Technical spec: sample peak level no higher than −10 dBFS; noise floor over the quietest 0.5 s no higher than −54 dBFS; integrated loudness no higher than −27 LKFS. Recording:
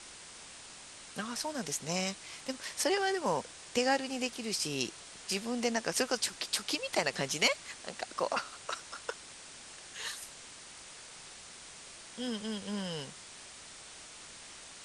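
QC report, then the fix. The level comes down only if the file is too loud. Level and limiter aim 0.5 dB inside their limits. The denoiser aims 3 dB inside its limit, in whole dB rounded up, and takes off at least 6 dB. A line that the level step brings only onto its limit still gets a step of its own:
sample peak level −12.0 dBFS: in spec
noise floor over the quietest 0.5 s −50 dBFS: out of spec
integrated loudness −34.0 LKFS: in spec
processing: broadband denoise 7 dB, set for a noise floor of −50 dBFS

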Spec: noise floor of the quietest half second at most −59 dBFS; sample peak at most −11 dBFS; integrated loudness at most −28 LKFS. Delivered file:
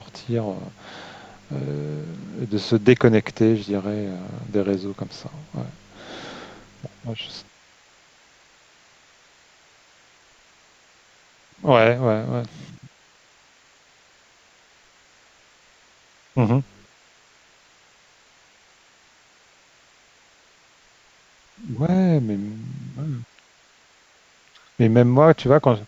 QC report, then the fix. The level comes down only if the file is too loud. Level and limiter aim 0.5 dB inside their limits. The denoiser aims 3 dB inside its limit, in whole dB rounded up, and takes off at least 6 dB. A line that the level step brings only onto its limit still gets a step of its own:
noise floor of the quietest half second −56 dBFS: out of spec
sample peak −1.5 dBFS: out of spec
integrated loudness −21.5 LKFS: out of spec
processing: level −7 dB
brickwall limiter −11.5 dBFS

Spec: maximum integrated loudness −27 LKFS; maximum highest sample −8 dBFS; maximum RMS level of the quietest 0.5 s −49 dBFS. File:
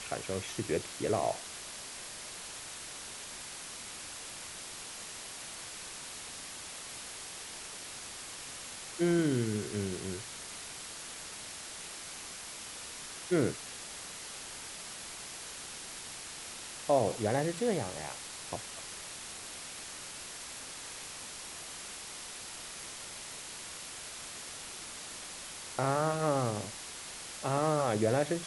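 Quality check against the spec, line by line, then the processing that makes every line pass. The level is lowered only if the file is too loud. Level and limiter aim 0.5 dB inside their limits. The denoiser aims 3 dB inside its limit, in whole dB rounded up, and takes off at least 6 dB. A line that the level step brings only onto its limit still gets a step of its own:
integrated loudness −37.0 LKFS: in spec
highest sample −15.5 dBFS: in spec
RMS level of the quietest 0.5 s −45 dBFS: out of spec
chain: broadband denoise 7 dB, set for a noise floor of −45 dBFS

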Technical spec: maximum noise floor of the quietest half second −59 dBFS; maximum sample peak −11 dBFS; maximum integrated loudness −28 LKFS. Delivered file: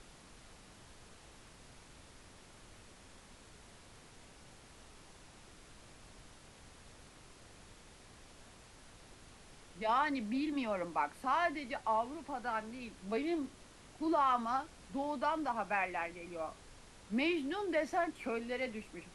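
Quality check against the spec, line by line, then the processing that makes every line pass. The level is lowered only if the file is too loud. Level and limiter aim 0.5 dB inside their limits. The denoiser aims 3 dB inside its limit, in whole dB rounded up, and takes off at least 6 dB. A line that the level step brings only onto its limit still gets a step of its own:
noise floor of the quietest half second −57 dBFS: out of spec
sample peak −20.5 dBFS: in spec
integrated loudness −36.5 LKFS: in spec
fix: broadband denoise 6 dB, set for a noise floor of −57 dBFS

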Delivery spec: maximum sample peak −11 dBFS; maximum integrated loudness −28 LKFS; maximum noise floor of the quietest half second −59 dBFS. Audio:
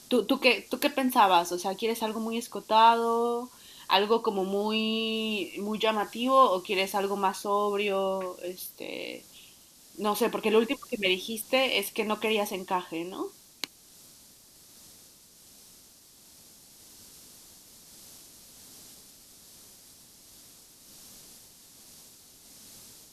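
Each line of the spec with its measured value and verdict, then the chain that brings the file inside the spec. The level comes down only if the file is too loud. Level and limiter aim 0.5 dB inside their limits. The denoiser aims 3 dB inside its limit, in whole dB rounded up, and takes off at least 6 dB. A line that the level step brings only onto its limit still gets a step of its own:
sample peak −7.5 dBFS: out of spec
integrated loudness −27.0 LKFS: out of spec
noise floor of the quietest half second −55 dBFS: out of spec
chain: broadband denoise 6 dB, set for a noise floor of −55 dBFS
level −1.5 dB
brickwall limiter −11.5 dBFS

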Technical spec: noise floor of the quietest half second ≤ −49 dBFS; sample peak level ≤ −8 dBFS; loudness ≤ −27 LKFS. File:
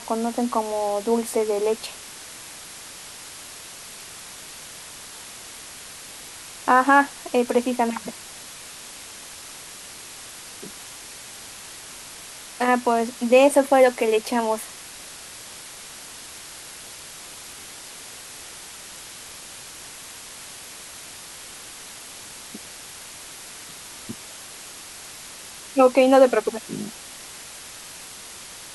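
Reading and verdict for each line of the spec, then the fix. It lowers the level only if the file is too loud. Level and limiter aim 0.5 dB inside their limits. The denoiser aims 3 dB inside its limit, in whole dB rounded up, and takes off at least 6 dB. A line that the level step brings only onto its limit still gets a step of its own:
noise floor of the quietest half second −40 dBFS: out of spec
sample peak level −3.5 dBFS: out of spec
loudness −21.0 LKFS: out of spec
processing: broadband denoise 6 dB, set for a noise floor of −40 dBFS
level −6.5 dB

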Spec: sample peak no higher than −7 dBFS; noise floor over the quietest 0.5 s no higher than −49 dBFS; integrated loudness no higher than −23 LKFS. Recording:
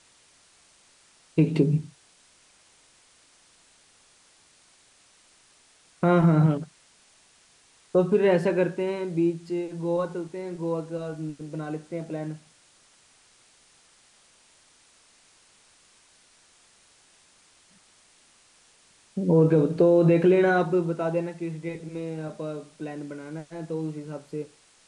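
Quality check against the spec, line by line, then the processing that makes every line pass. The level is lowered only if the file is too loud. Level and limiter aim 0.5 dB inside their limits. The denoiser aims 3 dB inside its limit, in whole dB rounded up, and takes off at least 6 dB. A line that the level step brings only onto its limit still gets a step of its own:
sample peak −9.5 dBFS: in spec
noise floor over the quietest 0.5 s −59 dBFS: in spec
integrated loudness −25.5 LKFS: in spec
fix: no processing needed

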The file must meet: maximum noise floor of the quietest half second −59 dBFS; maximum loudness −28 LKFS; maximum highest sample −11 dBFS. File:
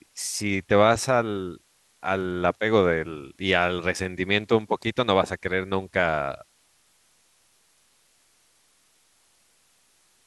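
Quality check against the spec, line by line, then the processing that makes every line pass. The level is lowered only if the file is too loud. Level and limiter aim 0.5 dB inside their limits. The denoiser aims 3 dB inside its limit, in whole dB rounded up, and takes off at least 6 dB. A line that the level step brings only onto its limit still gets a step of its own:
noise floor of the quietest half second −64 dBFS: in spec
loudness −24.5 LKFS: out of spec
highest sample −4.5 dBFS: out of spec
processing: level −4 dB
brickwall limiter −11.5 dBFS

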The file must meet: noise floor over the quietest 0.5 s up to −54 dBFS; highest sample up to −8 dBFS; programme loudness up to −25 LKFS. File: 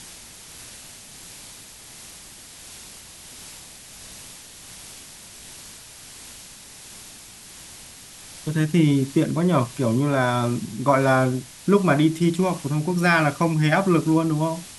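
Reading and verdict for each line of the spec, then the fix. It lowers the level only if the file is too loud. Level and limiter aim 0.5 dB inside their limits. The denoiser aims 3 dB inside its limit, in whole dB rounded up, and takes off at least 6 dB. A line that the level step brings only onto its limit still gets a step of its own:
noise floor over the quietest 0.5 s −43 dBFS: out of spec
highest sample −5.0 dBFS: out of spec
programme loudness −21.0 LKFS: out of spec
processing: broadband denoise 10 dB, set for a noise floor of −43 dBFS
level −4.5 dB

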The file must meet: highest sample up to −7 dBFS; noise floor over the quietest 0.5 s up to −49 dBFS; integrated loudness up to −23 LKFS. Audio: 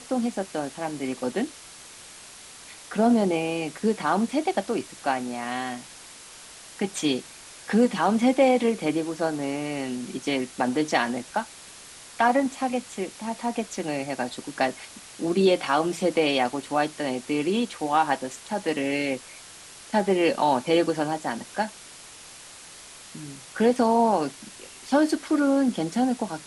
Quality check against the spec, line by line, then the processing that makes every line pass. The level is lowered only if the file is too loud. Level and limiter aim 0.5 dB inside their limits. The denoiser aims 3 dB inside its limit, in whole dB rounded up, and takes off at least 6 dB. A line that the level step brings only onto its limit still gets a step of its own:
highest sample −8.0 dBFS: in spec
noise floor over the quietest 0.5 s −45 dBFS: out of spec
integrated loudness −25.5 LKFS: in spec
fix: broadband denoise 7 dB, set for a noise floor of −45 dBFS

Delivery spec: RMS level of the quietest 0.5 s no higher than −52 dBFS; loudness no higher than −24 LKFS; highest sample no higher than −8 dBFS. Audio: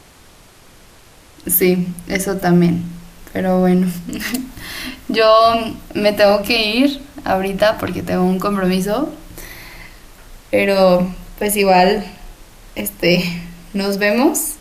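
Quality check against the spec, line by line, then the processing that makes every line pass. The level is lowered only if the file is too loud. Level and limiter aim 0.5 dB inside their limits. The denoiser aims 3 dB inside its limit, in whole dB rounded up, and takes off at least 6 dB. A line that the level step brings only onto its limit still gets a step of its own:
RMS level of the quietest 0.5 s −45 dBFS: out of spec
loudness −16.0 LKFS: out of spec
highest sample −2.5 dBFS: out of spec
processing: level −8.5 dB

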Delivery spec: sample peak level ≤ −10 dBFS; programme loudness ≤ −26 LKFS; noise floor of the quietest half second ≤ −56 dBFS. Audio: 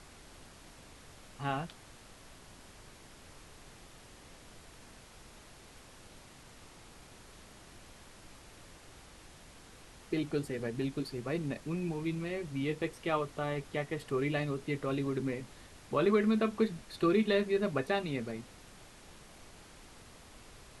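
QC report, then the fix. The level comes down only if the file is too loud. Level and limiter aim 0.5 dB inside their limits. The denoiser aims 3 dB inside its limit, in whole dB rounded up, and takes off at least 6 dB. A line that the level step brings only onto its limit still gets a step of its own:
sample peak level −16.5 dBFS: in spec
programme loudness −34.0 LKFS: in spec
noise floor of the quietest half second −54 dBFS: out of spec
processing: broadband denoise 6 dB, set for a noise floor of −54 dBFS

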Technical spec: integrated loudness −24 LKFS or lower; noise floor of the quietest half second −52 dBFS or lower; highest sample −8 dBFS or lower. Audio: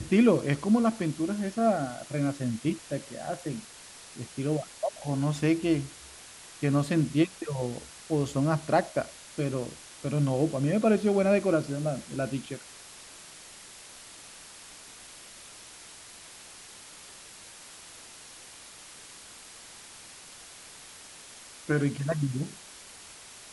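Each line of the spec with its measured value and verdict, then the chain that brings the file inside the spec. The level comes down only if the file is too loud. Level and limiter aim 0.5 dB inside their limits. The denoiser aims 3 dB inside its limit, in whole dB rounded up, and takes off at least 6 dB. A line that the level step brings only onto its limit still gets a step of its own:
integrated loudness −28.5 LKFS: in spec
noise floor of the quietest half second −48 dBFS: out of spec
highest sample −10.0 dBFS: in spec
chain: broadband denoise 7 dB, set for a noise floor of −48 dBFS

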